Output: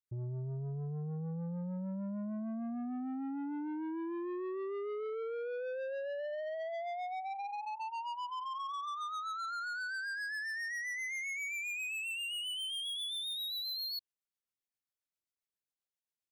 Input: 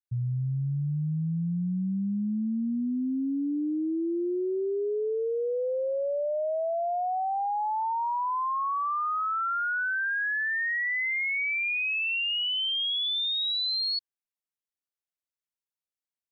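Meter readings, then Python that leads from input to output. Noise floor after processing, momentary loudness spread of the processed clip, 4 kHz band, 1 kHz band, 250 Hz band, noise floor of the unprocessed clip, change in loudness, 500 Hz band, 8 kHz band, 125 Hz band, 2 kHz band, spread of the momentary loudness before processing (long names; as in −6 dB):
below −85 dBFS, 4 LU, −10.0 dB, −11.0 dB, −10.0 dB, below −85 dBFS, −10.0 dB, −10.0 dB, can't be measured, −10.0 dB, −10.0 dB, 4 LU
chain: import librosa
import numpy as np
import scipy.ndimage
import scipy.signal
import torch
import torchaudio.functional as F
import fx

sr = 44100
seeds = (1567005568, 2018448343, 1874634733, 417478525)

y = fx.rotary(x, sr, hz=7.5)
y = 10.0 ** (-35.5 / 20.0) * np.tanh(y / 10.0 ** (-35.5 / 20.0))
y = y * librosa.db_to_amplitude(-1.5)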